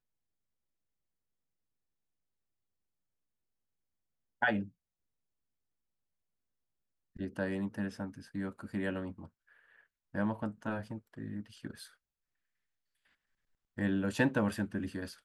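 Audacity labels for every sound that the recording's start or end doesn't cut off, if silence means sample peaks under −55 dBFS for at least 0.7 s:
4.410000	4.700000	sound
7.160000	11.940000	sound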